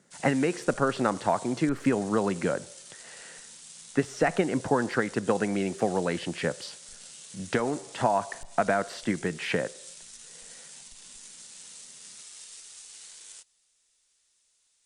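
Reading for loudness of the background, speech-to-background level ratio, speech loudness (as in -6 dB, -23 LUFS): -44.5 LUFS, 16.0 dB, -28.5 LUFS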